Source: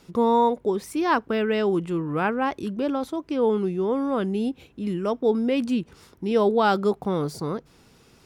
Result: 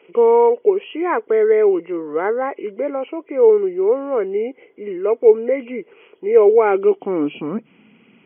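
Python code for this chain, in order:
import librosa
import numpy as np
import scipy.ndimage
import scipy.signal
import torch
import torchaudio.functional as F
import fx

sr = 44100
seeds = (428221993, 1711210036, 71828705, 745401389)

y = fx.freq_compress(x, sr, knee_hz=1900.0, ratio=4.0)
y = fx.filter_sweep_highpass(y, sr, from_hz=430.0, to_hz=210.0, start_s=6.62, end_s=7.67, q=4.3)
y = F.gain(torch.from_numpy(y), -1.0).numpy()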